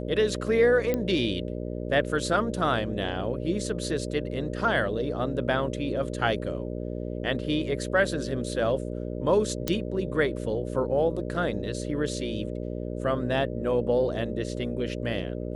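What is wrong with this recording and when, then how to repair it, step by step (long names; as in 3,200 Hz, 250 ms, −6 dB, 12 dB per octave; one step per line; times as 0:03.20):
mains buzz 60 Hz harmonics 10 −33 dBFS
0:00.94: click −14 dBFS
0:09.68: click −11 dBFS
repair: click removal
hum removal 60 Hz, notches 10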